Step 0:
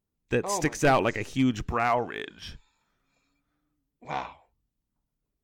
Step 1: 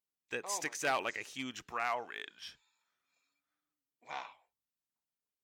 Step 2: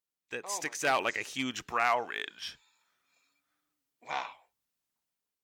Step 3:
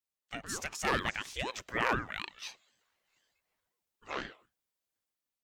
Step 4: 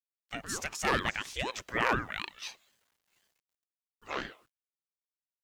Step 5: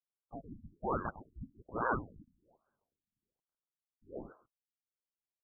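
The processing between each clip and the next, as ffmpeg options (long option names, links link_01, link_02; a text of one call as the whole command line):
ffmpeg -i in.wav -af "highpass=frequency=1500:poles=1,volume=-4.5dB" out.wav
ffmpeg -i in.wav -af "dynaudnorm=framelen=360:gausssize=5:maxgain=7.5dB" out.wav
ffmpeg -i in.wav -af "aeval=exprs='val(0)*sin(2*PI*490*n/s+490*0.6/4*sin(2*PI*4*n/s))':channel_layout=same" out.wav
ffmpeg -i in.wav -af "acrusher=bits=11:mix=0:aa=0.000001,volume=2dB" out.wav
ffmpeg -i in.wav -af "afftfilt=real='re*lt(b*sr/1024,280*pow(1700/280,0.5+0.5*sin(2*PI*1.2*pts/sr)))':imag='im*lt(b*sr/1024,280*pow(1700/280,0.5+0.5*sin(2*PI*1.2*pts/sr)))':win_size=1024:overlap=0.75,volume=-3.5dB" out.wav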